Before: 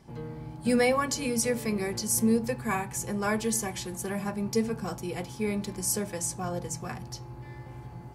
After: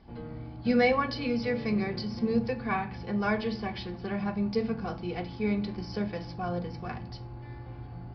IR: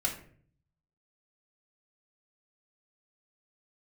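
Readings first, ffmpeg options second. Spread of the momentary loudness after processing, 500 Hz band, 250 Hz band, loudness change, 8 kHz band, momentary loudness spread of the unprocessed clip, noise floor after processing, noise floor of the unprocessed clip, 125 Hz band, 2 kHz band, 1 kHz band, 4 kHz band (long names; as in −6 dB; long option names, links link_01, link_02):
15 LU, −1.0 dB, 0.0 dB, −1.5 dB, below −30 dB, 16 LU, −43 dBFS, −45 dBFS, +0.5 dB, 0.0 dB, +0.5 dB, −2.5 dB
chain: -filter_complex "[0:a]asplit=2[link_01][link_02];[1:a]atrim=start_sample=2205,lowshelf=frequency=230:gain=7.5[link_03];[link_02][link_03]afir=irnorm=-1:irlink=0,volume=-10dB[link_04];[link_01][link_04]amix=inputs=2:normalize=0,aresample=11025,aresample=44100,volume=-3.5dB"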